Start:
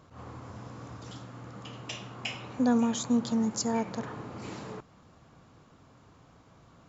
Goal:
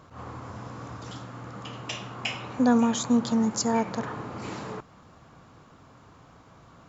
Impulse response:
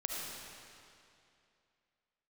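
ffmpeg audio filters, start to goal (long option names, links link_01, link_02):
-af "equalizer=frequency=1200:width=0.84:gain=3.5,volume=3.5dB"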